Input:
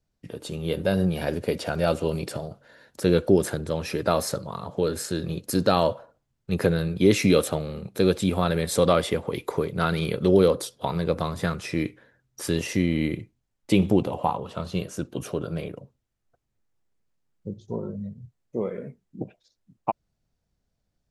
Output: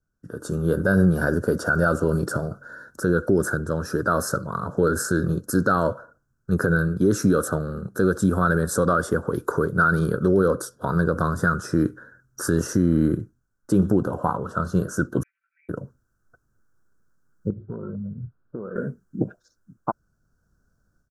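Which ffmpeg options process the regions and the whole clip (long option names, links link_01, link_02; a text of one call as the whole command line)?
ffmpeg -i in.wav -filter_complex "[0:a]asettb=1/sr,asplit=3[link_01][link_02][link_03];[link_01]atrim=end=15.234[link_04];[link_02]atrim=start=15.23:end=15.69,asetpts=PTS-STARTPTS,afade=type=in:duration=0.004:curve=qsin,afade=type=out:start_time=0.456:duration=0.004:curve=qsin,asuperpass=centerf=2200:order=8:qfactor=4.8,aecho=1:1:5.2:0.98,atrim=end_sample=20286[link_05];[link_03]atrim=start=15.686[link_06];[link_04][link_05]acrossfade=duration=0.004:curve1=hsin:curve2=qsin[link_07];[link_07][link_06]acrossfade=duration=0.004:curve1=qsin:curve2=hsin,asettb=1/sr,asplit=3[link_08][link_09][link_10];[link_08]atrim=end=17.504[link_11];[link_09]atrim=start=17.5:end=18.76,asetpts=PTS-STARTPTS,afade=type=in:duration=0.004:curve=qsin,afade=type=out:start_time=1.256:duration=0.004:curve=qsin,lowpass=frequency=1600:width=0.5412,lowpass=frequency=1600:width=1.3066,acompressor=threshold=-37dB:ratio=12:attack=3.2:release=140:knee=1:detection=peak[link_12];[link_10]atrim=start=18.756[link_13];[link_11][link_12]acrossfade=duration=0.004:curve1=hsin:curve2=qsin[link_14];[link_14][link_13]acrossfade=duration=0.004:curve1=qsin:curve2=hsin,dynaudnorm=framelen=250:gausssize=3:maxgain=11.5dB,firequalizer=gain_entry='entry(340,0);entry(820,-8);entry(1500,13);entry(2100,-30);entry(5700,-3)':delay=0.05:min_phase=1,alimiter=level_in=6.5dB:limit=-1dB:release=50:level=0:latency=1,volume=-8.5dB" out.wav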